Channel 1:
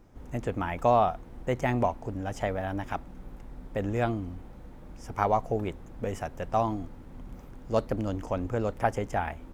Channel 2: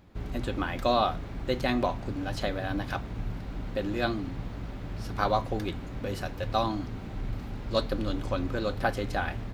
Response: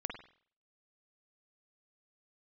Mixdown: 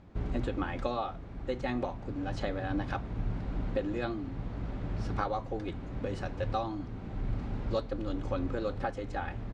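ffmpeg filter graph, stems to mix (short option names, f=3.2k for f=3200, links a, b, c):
-filter_complex "[0:a]aecho=1:1:6:0.99,volume=-16dB,asplit=2[a][b];[1:a]highshelf=f=2.3k:g=-9.5,volume=2dB[c];[b]apad=whole_len=420443[d];[c][d]sidechaincompress=threshold=-42dB:ratio=8:attack=30:release=1160[e];[a][e]amix=inputs=2:normalize=0,lowpass=f=8.4k:w=0.5412,lowpass=f=8.4k:w=1.3066"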